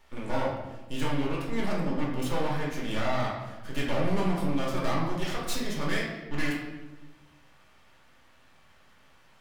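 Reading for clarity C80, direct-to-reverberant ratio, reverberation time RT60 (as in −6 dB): 5.0 dB, −4.5 dB, 1.1 s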